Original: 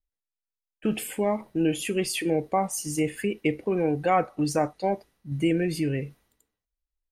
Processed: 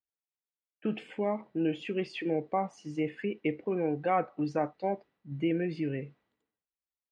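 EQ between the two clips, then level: BPF 140–3400 Hz; air absorption 100 m; -5.0 dB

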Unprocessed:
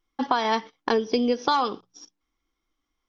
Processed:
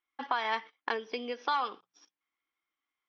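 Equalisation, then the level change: band-pass 2300 Hz, Q 1.4; high shelf 2100 Hz -11 dB; +4.0 dB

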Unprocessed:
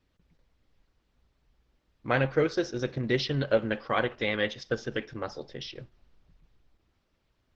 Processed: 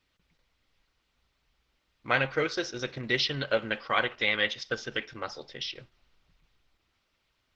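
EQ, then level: tilt shelf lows -9 dB, about 1100 Hz; high shelf 4800 Hz -10.5 dB; notch 1700 Hz, Q 16; +2.0 dB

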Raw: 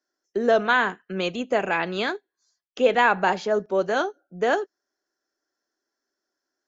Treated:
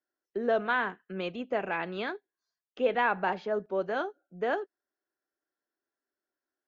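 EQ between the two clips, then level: LPF 3500 Hz 12 dB/oct; air absorption 56 m; -7.5 dB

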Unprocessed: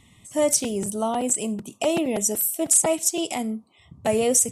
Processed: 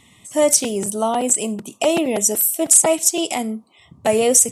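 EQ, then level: low shelf 140 Hz -11.5 dB; +6.0 dB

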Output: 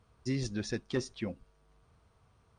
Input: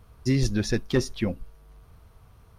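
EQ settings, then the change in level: HPF 120 Hz 6 dB/oct; brick-wall FIR low-pass 9600 Hz; -8.5 dB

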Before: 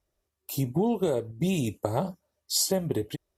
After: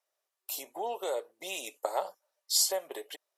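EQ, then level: HPF 570 Hz 24 dB/oct; 0.0 dB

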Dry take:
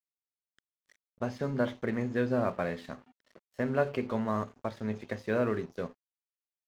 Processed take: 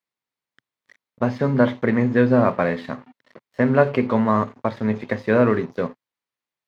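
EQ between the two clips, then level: ten-band EQ 125 Hz +12 dB, 250 Hz +10 dB, 500 Hz +8 dB, 1000 Hz +11 dB, 2000 Hz +10 dB, 4000 Hz +7 dB; -1.0 dB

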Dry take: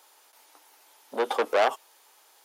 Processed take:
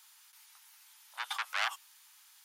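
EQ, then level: Bessel high-pass 1700 Hz, order 8; 0.0 dB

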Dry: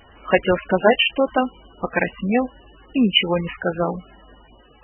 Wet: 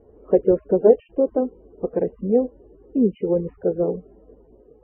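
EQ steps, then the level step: synth low-pass 440 Hz, resonance Q 4.9; air absorption 180 m; -4.5 dB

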